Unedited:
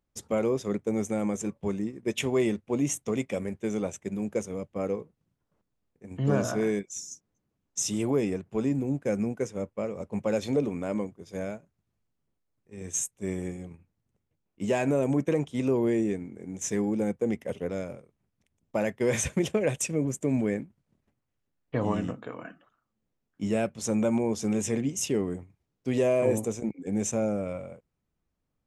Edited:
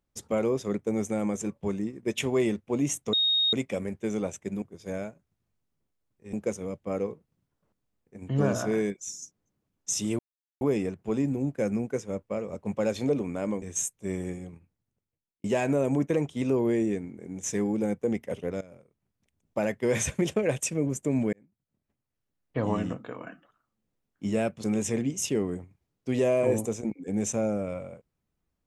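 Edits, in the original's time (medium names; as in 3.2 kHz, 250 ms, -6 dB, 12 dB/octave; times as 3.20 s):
3.13 s: add tone 3.73 kHz -21 dBFS 0.40 s
8.08 s: insert silence 0.42 s
11.09–12.80 s: move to 4.22 s
13.58–14.62 s: fade out
17.79–18.81 s: fade in equal-power, from -17.5 dB
20.51–21.82 s: fade in
23.82–24.43 s: delete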